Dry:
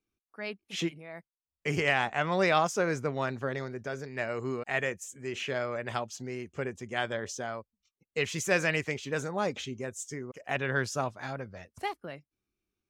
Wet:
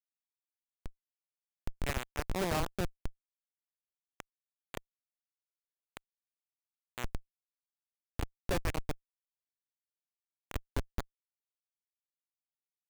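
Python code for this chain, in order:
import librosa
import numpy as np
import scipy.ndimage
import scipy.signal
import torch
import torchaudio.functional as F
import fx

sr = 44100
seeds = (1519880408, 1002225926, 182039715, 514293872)

p1 = fx.level_steps(x, sr, step_db=24)
p2 = x + F.gain(torch.from_numpy(p1), -3.0).numpy()
p3 = fx.schmitt(p2, sr, flips_db=-20.0)
y = F.gain(torch.from_numpy(p3), 2.0).numpy()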